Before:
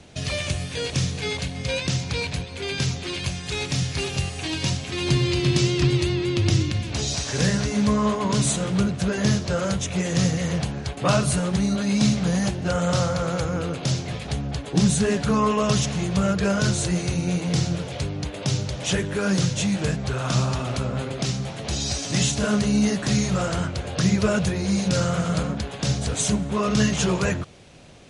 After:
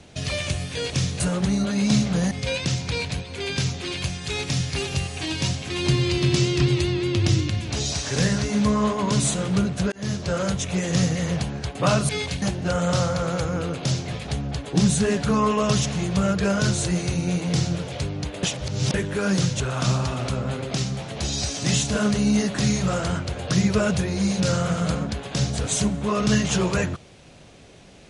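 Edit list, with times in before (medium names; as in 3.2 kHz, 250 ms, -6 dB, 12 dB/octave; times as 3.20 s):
1.20–1.53 s: swap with 11.31–12.42 s
9.14–9.66 s: fade in equal-power
18.43–18.94 s: reverse
19.60–20.08 s: delete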